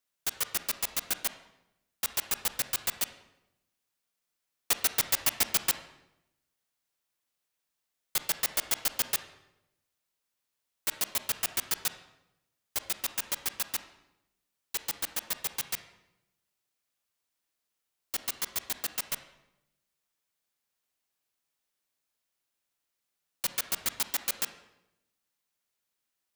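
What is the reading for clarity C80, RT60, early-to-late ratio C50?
13.0 dB, 0.85 s, 10.5 dB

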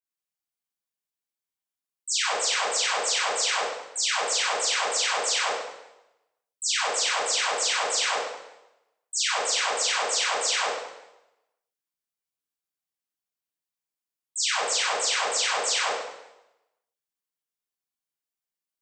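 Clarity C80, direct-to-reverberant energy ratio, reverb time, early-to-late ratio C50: 3.0 dB, -10.0 dB, 0.95 s, -1.0 dB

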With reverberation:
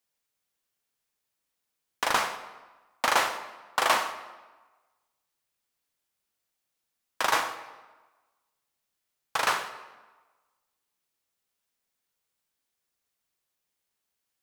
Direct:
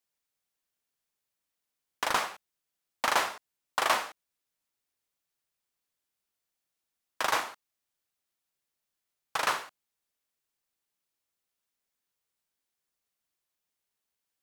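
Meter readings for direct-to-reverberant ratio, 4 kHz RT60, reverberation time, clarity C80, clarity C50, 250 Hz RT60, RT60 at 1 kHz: 8.5 dB, 0.90 s, 1.2 s, 12.5 dB, 11.0 dB, 1.2 s, 1.3 s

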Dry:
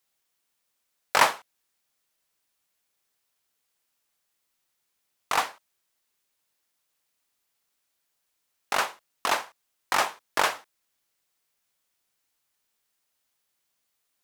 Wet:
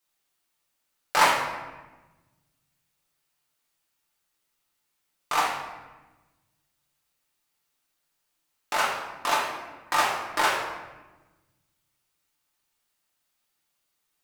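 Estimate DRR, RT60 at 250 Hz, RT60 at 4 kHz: -4.0 dB, 1.8 s, 0.80 s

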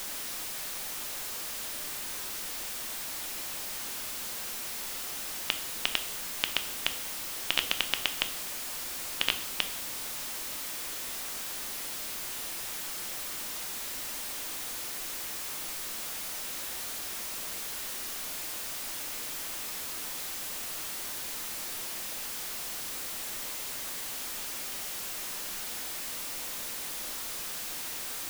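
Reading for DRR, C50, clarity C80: 8.5 dB, 13.5 dB, 17.0 dB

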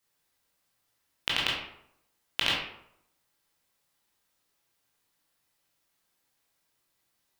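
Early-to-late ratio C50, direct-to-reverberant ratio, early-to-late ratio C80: 1.5 dB, -5.5 dB, 5.5 dB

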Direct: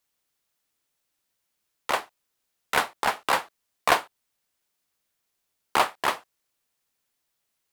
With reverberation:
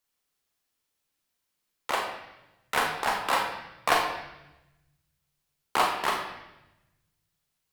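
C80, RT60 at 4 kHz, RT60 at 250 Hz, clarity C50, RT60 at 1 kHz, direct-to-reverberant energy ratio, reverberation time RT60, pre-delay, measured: 6.5 dB, 0.95 s, 1.4 s, 4.5 dB, 0.90 s, 1.0 dB, 0.95 s, 34 ms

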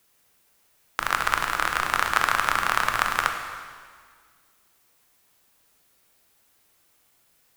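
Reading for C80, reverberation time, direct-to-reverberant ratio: 7.0 dB, 1.7 s, 4.0 dB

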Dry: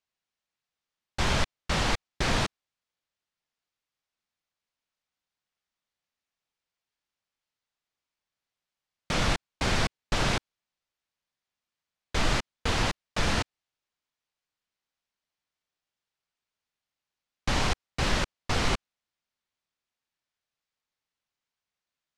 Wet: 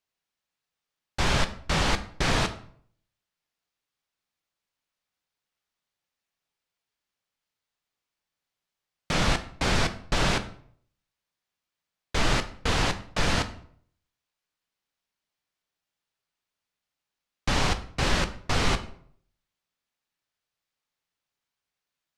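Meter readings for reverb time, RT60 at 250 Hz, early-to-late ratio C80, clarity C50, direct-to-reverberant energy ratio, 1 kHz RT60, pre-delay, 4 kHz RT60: 0.60 s, 0.60 s, 17.5 dB, 13.5 dB, 8.5 dB, 0.55 s, 6 ms, 0.40 s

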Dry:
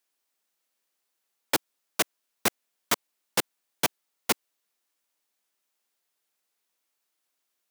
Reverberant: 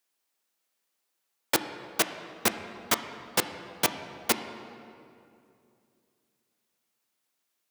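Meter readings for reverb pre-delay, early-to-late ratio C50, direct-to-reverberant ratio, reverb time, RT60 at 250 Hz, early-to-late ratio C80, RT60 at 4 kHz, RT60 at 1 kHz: 6 ms, 9.5 dB, 8.0 dB, 2.6 s, 3.0 s, 10.0 dB, 1.7 s, 2.4 s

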